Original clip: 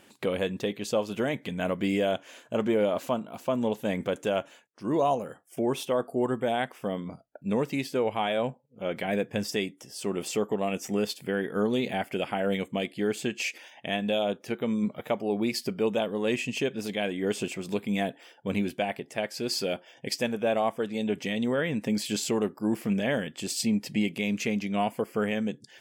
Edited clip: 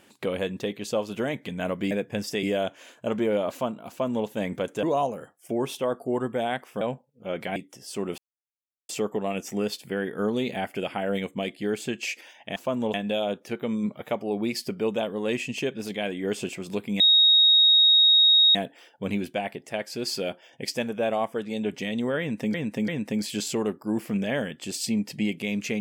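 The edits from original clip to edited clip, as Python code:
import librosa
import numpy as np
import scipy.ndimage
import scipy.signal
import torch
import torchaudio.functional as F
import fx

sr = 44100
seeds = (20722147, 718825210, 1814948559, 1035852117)

y = fx.edit(x, sr, fx.duplicate(start_s=3.37, length_s=0.38, to_s=13.93),
    fx.cut(start_s=4.31, length_s=0.6),
    fx.cut(start_s=6.89, length_s=1.48),
    fx.move(start_s=9.12, length_s=0.52, to_s=1.91),
    fx.insert_silence(at_s=10.26, length_s=0.71),
    fx.insert_tone(at_s=17.99, length_s=1.55, hz=3760.0, db=-14.0),
    fx.repeat(start_s=21.64, length_s=0.34, count=3), tone=tone)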